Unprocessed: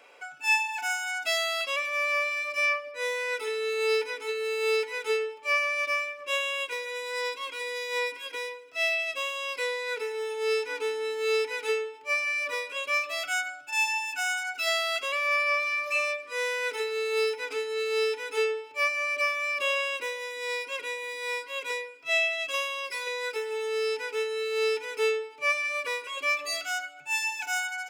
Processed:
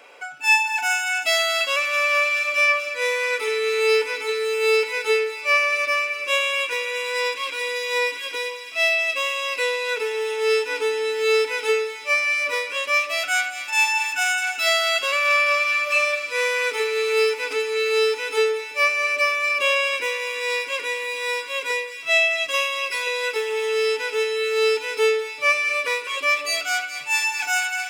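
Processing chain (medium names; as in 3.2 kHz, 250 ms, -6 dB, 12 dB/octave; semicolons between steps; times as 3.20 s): feedback echo behind a high-pass 216 ms, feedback 82%, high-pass 1.8 kHz, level -12 dB; trim +7 dB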